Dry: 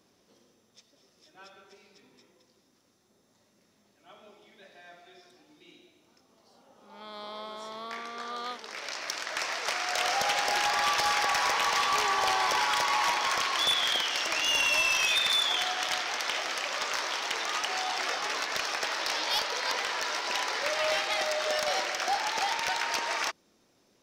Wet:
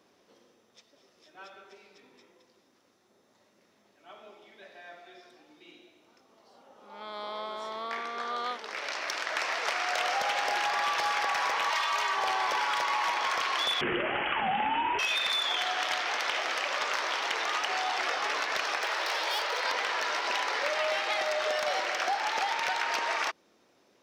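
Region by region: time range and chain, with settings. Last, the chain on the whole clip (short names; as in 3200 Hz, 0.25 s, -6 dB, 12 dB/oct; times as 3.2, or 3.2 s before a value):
11.7–12.16 bell 240 Hz -13 dB 1.2 oct + comb 3.2 ms, depth 89%
13.81–14.99 HPF 60 Hz + inverted band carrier 3600 Hz
18.82–19.65 overloaded stage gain 27 dB + steep high-pass 320 Hz 96 dB/oct
whole clip: HPF 42 Hz; tone controls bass -9 dB, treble -8 dB; compressor, threshold -30 dBFS; gain +4 dB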